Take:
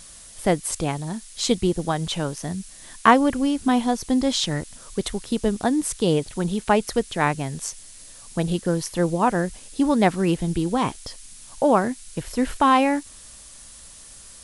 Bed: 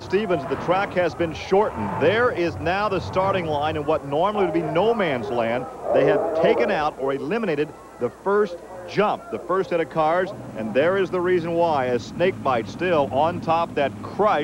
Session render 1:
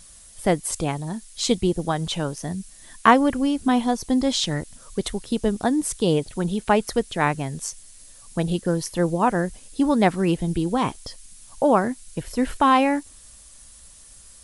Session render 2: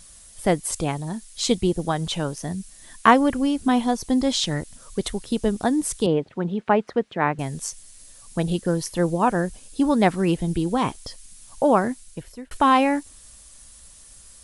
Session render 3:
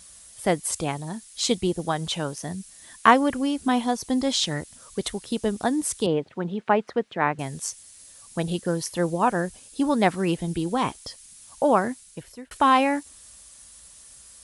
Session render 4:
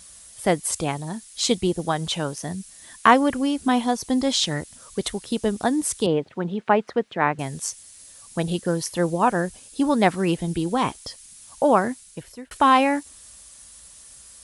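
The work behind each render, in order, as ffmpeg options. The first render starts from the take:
-af "afftdn=nr=6:nf=-45"
-filter_complex "[0:a]asettb=1/sr,asplit=3[a][b][c];[a]atrim=end=6.064[d];[b]atrim=start=6.06:end=7.39,asetpts=PTS-STARTPTS,afade=t=in:d=0.004:c=qsin,afade=t=out:st=1.326:d=0.004:c=qsin,highpass=150,lowpass=2.1k[e];[c]atrim=start=7.386[f];[d][e]acrossfade=d=0.004:c1=hsin:c2=qsin[g];[g][f]acrossfade=d=0.004:c1=qsin:c2=hsin,asettb=1/sr,asplit=3[h][i][j];[h]atrim=end=9.244[k];[i]atrim=start=9.24:end=9.92,asetpts=PTS-STARTPTS,afade=t=in:d=0.004:c=qsin,afade=t=out:st=0.676:d=0.004:c=qsin,bandreject=f=2k:w=12[l];[j]atrim=start=9.916[m];[k][l]acrossfade=d=0.004:c1=hsin:c2=qsin[n];[n][m]acrossfade=d=0.004:c1=qsin:c2=hsin,asplit=2[o][p];[o]atrim=end=12.51,asetpts=PTS-STARTPTS,afade=t=out:st=11.91:d=0.6[q];[p]atrim=start=12.51,asetpts=PTS-STARTPTS,afade=t=in:d=0.004:c=hsin[r];[q][r]concat=n=2:v=0:a=1"
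-af "highpass=50,lowshelf=f=450:g=-4.5"
-af "volume=2dB,alimiter=limit=-2dB:level=0:latency=1"

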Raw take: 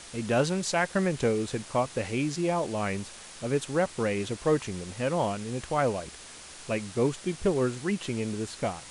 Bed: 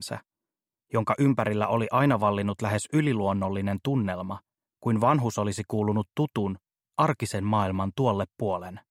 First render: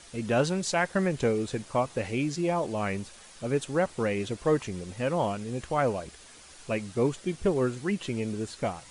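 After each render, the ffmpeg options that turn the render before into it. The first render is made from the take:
-af "afftdn=nr=7:nf=-46"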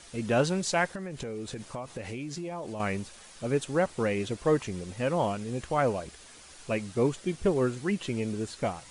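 -filter_complex "[0:a]asettb=1/sr,asplit=3[a][b][c];[a]atrim=end=0.884[d];[b]atrim=start=0.88:end=2.8,asetpts=PTS-STARTPTS,afade=t=in:d=0.004:c=qsin,afade=t=out:st=1.916:d=0.004:c=qsin,acompressor=threshold=-33dB:ratio=8:attack=3.2:release=140:knee=1:detection=peak[e];[c]atrim=start=2.796[f];[d][e]acrossfade=d=0.004:c1=hsin:c2=qsin[g];[g][f]acrossfade=d=0.004:c1=qsin:c2=hsin"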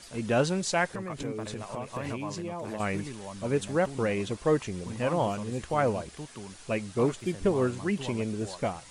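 -filter_complex "[1:a]volume=-15.5dB[a];[0:a][a]amix=inputs=2:normalize=0"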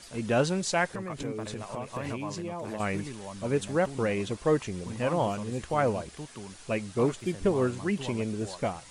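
-af anull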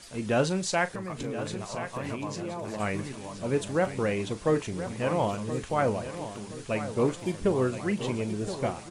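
-filter_complex "[0:a]asplit=2[a][b];[b]adelay=38,volume=-14dB[c];[a][c]amix=inputs=2:normalize=0,aecho=1:1:1023|2046|3069|4092:0.266|0.104|0.0405|0.0158"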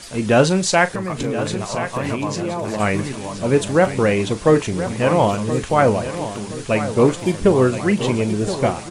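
-af "volume=11dB"

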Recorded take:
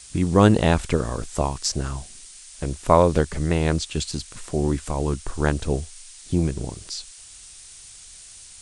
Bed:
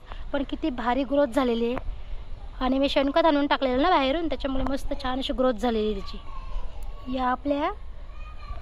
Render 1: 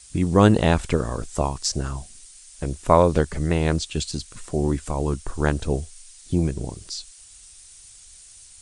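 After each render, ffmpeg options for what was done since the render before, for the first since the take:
-af "afftdn=nr=6:nf=-45"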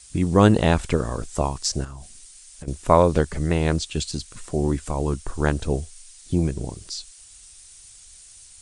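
-filter_complex "[0:a]asettb=1/sr,asplit=3[a][b][c];[a]atrim=end=1.844[d];[b]atrim=start=1.84:end=2.68,asetpts=PTS-STARTPTS,afade=t=in:d=0.004:c=qsin,afade=t=out:st=0.836:d=0.004:c=qsin,acompressor=threshold=-33dB:ratio=6:attack=3.2:release=140:knee=1:detection=peak[e];[c]atrim=start=2.676[f];[d][e]acrossfade=d=0.004:c1=hsin:c2=qsin[g];[g][f]acrossfade=d=0.004:c1=qsin:c2=hsin"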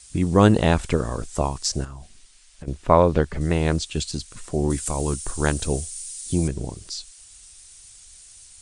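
-filter_complex "[0:a]asettb=1/sr,asplit=3[a][b][c];[a]atrim=end=1.864[d];[b]atrim=start=1.86:end=3.41,asetpts=PTS-STARTPTS,afade=t=in:d=0.004:c=qsin,afade=t=out:st=1.546:d=0.004:c=qsin,acrossover=split=4500[e][f];[f]acompressor=threshold=-57dB:ratio=4:attack=1:release=60[g];[e][g]amix=inputs=2:normalize=0[h];[c]atrim=start=3.406[i];[d][h]acrossfade=d=0.004:c1=hsin:c2=qsin[j];[j][i]acrossfade=d=0.004:c1=qsin:c2=hsin,asettb=1/sr,asplit=3[k][l][m];[k]atrim=end=4.704[n];[l]atrim=start=4.7:end=6.48,asetpts=PTS-STARTPTS,afade=t=in:d=0.004:c=qsin,afade=t=out:st=1.776:d=0.004:c=qsin,aemphasis=mode=production:type=75fm[o];[m]atrim=start=6.476[p];[n][o]acrossfade=d=0.004:c1=hsin:c2=qsin[q];[q][p]acrossfade=d=0.004:c1=qsin:c2=hsin"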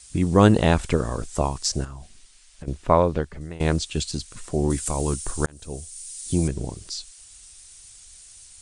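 -filter_complex "[0:a]asplit=3[a][b][c];[a]atrim=end=3.6,asetpts=PTS-STARTPTS,afade=t=out:st=2.76:d=0.84:silence=0.105925[d];[b]atrim=start=3.6:end=5.46,asetpts=PTS-STARTPTS,afade=t=in:d=0.004:c=hsin:silence=0.105925,afade=t=out:st=1.856:d=0.004:c=hsin[e];[c]atrim=start=5.46,asetpts=PTS-STARTPTS,afade=t=in:d=0.84[f];[d][e][f]concat=n=3:v=0:a=1"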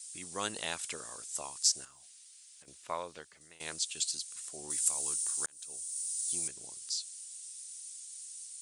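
-af "highpass=43,aderivative"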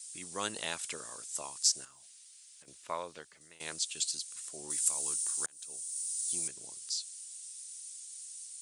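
-af "highpass=89,bandreject=f=750:w=20"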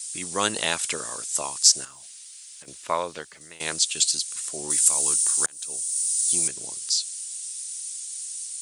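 -af "volume=12dB,alimiter=limit=-1dB:level=0:latency=1"

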